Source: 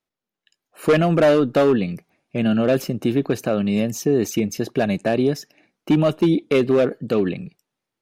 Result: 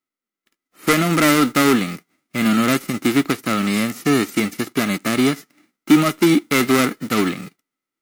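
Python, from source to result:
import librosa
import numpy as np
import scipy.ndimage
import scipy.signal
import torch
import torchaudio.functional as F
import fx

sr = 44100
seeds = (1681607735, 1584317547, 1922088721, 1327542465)

y = fx.envelope_flatten(x, sr, power=0.3)
y = fx.small_body(y, sr, hz=(280.0, 1300.0, 2000.0), ring_ms=20, db=14)
y = y * 10.0 ** (-6.5 / 20.0)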